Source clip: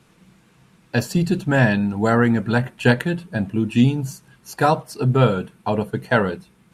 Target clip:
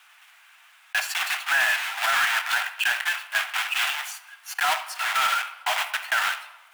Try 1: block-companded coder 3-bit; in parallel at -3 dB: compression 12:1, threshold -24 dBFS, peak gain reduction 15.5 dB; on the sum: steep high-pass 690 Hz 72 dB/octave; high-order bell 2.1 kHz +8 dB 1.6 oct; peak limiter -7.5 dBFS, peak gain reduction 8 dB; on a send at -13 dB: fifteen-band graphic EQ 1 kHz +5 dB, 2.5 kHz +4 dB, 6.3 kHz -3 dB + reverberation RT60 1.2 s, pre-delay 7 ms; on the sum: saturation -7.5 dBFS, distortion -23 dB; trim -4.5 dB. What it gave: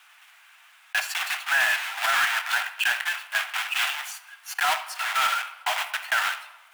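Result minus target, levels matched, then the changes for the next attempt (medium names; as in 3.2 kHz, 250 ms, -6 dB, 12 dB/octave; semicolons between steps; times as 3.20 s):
compression: peak gain reduction +9.5 dB
change: compression 12:1, threshold -13.5 dBFS, peak gain reduction 6 dB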